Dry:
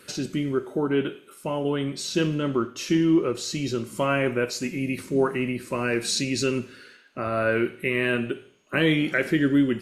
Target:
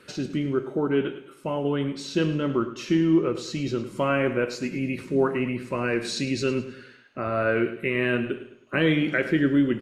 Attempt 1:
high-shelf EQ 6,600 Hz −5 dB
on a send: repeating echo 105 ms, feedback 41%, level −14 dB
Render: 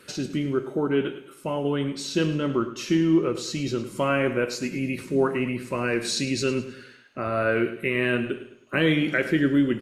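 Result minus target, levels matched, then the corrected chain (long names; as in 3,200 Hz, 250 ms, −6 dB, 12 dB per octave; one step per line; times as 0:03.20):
8,000 Hz band +5.5 dB
high-shelf EQ 6,600 Hz −16 dB
on a send: repeating echo 105 ms, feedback 41%, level −14 dB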